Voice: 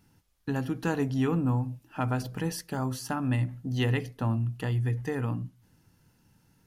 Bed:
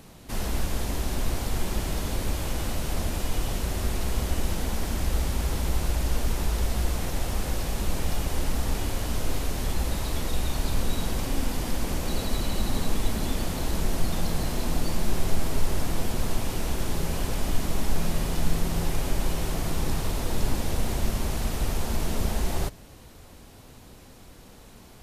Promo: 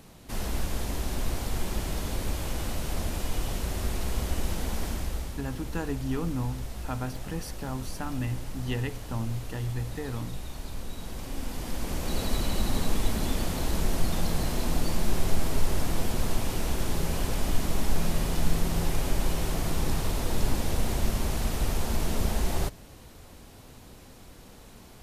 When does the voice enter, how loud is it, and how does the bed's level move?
4.90 s, -4.5 dB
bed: 4.87 s -2.5 dB
5.41 s -11 dB
10.95 s -11 dB
12.26 s -0.5 dB

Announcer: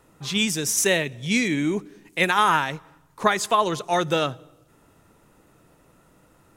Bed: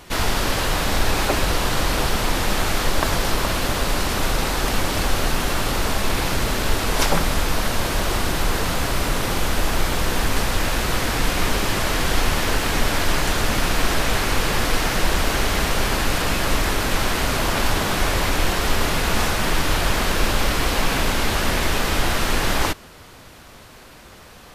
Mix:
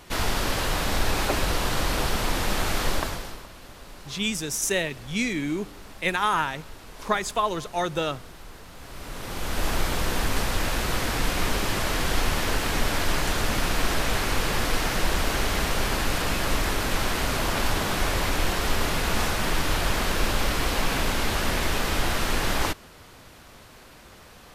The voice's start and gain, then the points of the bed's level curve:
3.85 s, -4.5 dB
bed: 2.94 s -4.5 dB
3.49 s -23 dB
8.71 s -23 dB
9.66 s -4.5 dB

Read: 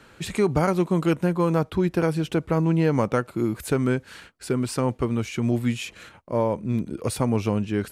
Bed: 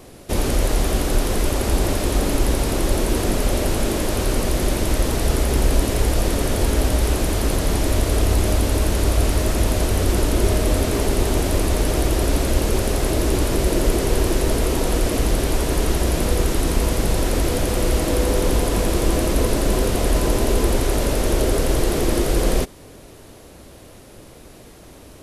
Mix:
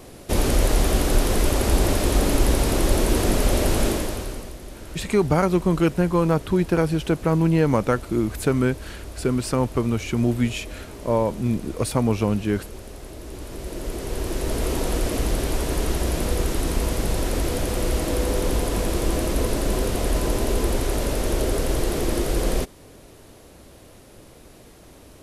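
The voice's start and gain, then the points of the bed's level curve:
4.75 s, +2.0 dB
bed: 3.87 s 0 dB
4.59 s -18.5 dB
13.20 s -18.5 dB
14.69 s -4 dB

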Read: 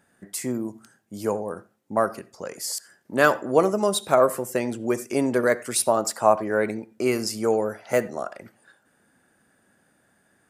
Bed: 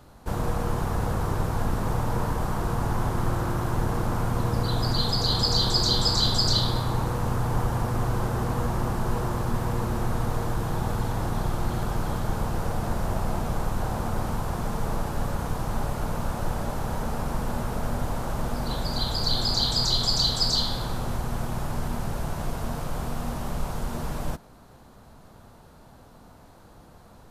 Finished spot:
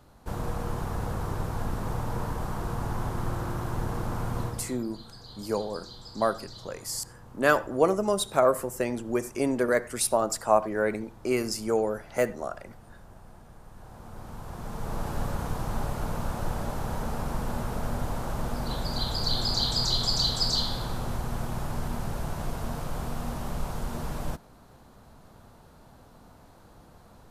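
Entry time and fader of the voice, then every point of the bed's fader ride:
4.25 s, -3.5 dB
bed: 4.43 s -5 dB
4.84 s -23 dB
13.60 s -23 dB
15.10 s -2.5 dB

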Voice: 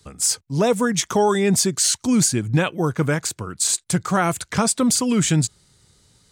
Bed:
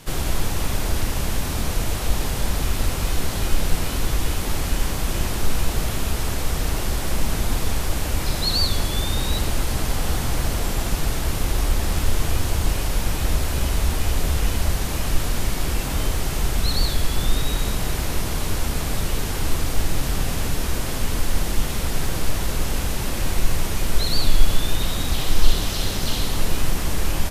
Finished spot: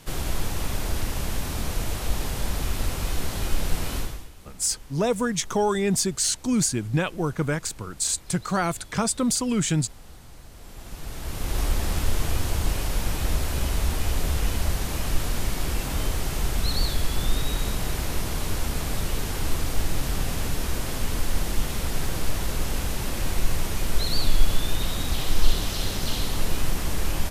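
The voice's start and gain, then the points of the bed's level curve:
4.40 s, -5.0 dB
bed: 3.99 s -4.5 dB
4.31 s -23.5 dB
10.49 s -23.5 dB
11.60 s -3.5 dB

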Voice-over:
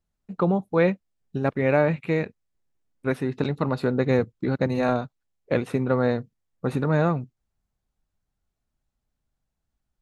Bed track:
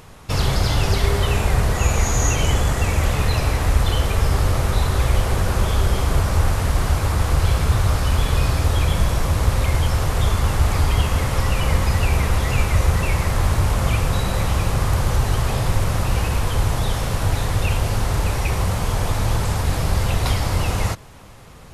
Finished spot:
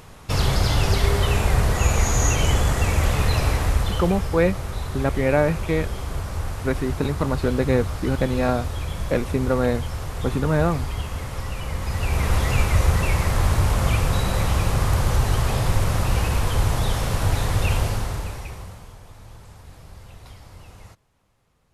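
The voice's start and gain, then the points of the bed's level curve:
3.60 s, +1.0 dB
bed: 3.52 s -1 dB
4.38 s -10 dB
11.74 s -10 dB
12.33 s -1 dB
17.81 s -1 dB
19.01 s -23.5 dB

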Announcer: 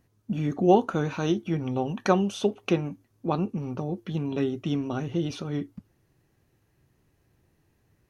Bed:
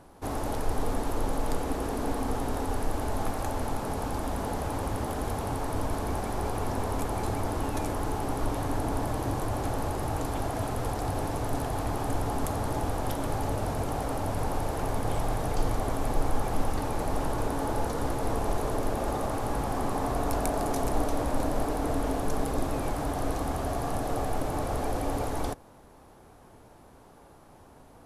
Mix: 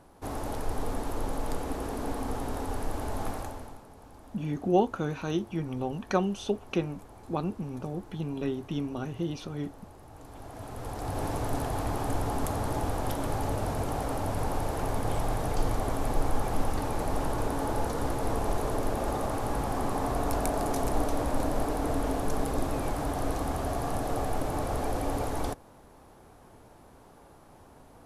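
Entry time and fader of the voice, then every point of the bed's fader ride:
4.05 s, -4.5 dB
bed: 3.35 s -3 dB
3.88 s -19.5 dB
10.08 s -19.5 dB
11.26 s -0.5 dB

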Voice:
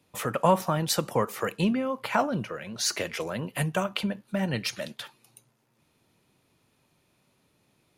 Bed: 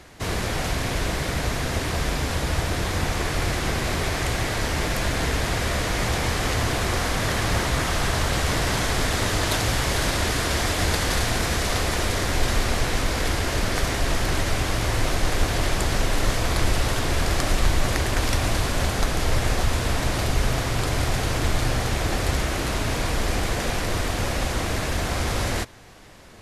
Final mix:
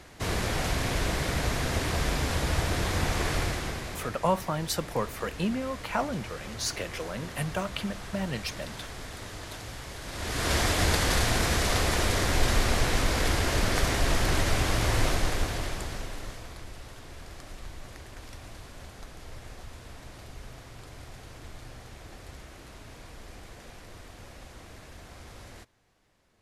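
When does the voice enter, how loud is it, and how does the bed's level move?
3.80 s, -4.0 dB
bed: 3.35 s -3 dB
4.20 s -17.5 dB
10.03 s -17.5 dB
10.51 s -2 dB
15.05 s -2 dB
16.66 s -22 dB

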